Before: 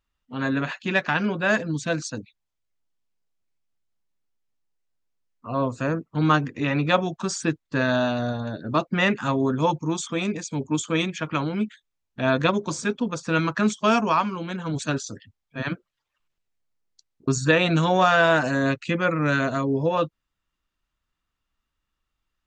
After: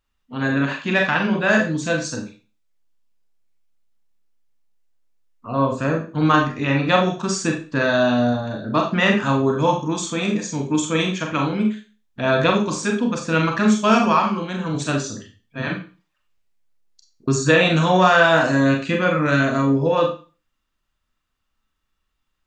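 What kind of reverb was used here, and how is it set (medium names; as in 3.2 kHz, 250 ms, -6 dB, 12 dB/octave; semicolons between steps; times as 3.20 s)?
Schroeder reverb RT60 0.35 s, combs from 29 ms, DRR 1.5 dB; trim +2 dB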